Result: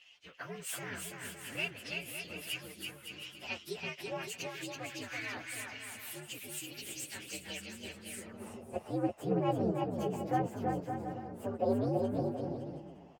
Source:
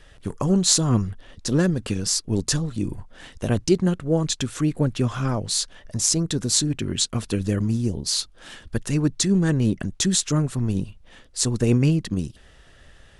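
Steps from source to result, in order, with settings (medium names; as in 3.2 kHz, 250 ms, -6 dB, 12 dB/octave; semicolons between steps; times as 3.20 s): frequency axis rescaled in octaves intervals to 125%; bouncing-ball echo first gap 330 ms, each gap 0.7×, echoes 5; band-pass sweep 2.8 kHz -> 760 Hz, 8.06–8.57 s; trim +4.5 dB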